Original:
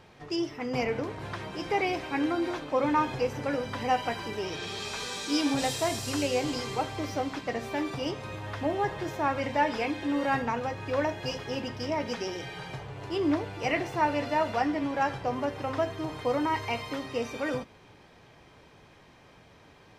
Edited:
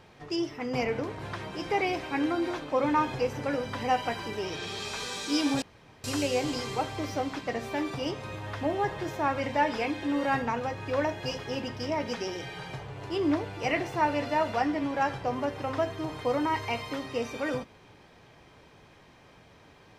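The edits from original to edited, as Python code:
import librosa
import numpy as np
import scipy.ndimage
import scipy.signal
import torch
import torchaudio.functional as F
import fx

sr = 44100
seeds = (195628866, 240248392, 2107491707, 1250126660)

y = fx.edit(x, sr, fx.room_tone_fill(start_s=5.62, length_s=0.42), tone=tone)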